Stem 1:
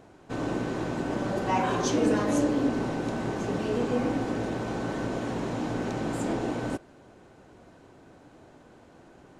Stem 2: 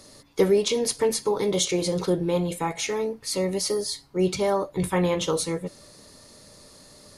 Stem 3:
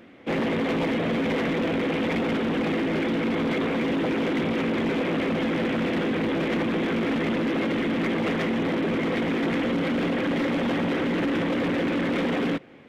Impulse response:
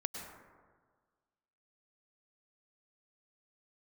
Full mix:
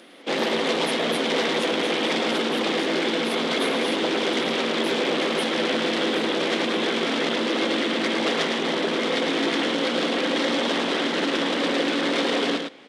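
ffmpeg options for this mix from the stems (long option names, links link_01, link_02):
-filter_complex "[0:a]volume=-14dB[link_01];[1:a]volume=-20dB[link_02];[2:a]lowpass=frequency=6300:width=0.5412,lowpass=frequency=6300:width=1.3066,aexciter=amount=5.5:drive=1.1:freq=3300,volume=3dB,asplit=2[link_03][link_04];[link_04]volume=-5dB,aecho=0:1:108:1[link_05];[link_01][link_02][link_03][link_05]amix=inputs=4:normalize=0,highpass=350,aexciter=amount=5.1:drive=2.6:freq=8800"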